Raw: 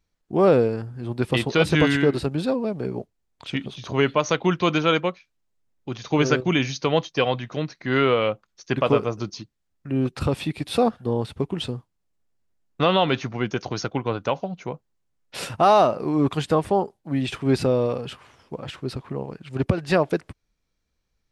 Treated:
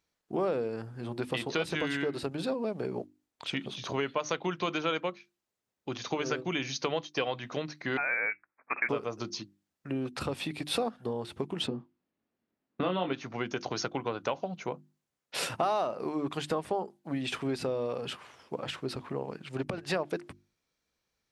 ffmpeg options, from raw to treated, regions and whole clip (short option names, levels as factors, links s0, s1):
-filter_complex "[0:a]asettb=1/sr,asplit=3[s0][s1][s2];[s0]atrim=end=7.974[s3];[s1]atrim=start=7.97:end=8.89,asetpts=PTS-STARTPTS,afade=t=in:d=0.004:c=qsin,afade=t=out:st=0.916:d=0.004:c=qsin,highpass=660,lowpass=f=2400:t=q:w=0.5098,lowpass=f=2400:t=q:w=0.6013,lowpass=f=2400:t=q:w=0.9,lowpass=f=2400:t=q:w=2.563,afreqshift=-2800[s4];[s2]atrim=start=8.886[s5];[s3][s4]acrossfade=d=0.004:c1=hsin:c2=qsin[s6];[s6][s5]acrossfade=d=0.004:c1=qsin:c2=hsin,asettb=1/sr,asplit=3[s7][s8][s9];[s7]atrim=end=11.674[s10];[s8]atrim=start=11.67:end=13.13,asetpts=PTS-STARTPTS,afade=t=in:d=0.004:c=qsin,afade=t=out:st=1.456:d=0.004:c=qsin,lowpass=3200,equalizer=f=250:w=1.3:g=11,asplit=2[s11][s12];[s12]adelay=22,volume=0.501[s13];[s11][s13]amix=inputs=2:normalize=0,atrim=end_sample=64386[s14];[s9]atrim=start=13.126[s15];[s10][s14]acrossfade=d=0.004:c1=hsin:c2=qsin[s16];[s16][s15]acrossfade=d=0.004:c1=qsin:c2=hsin,acompressor=threshold=0.0501:ratio=6,highpass=f=270:p=1,bandreject=f=50:t=h:w=6,bandreject=f=100:t=h:w=6,bandreject=f=150:t=h:w=6,bandreject=f=200:t=h:w=6,bandreject=f=250:t=h:w=6,bandreject=f=300:t=h:w=6,bandreject=f=350:t=h:w=6"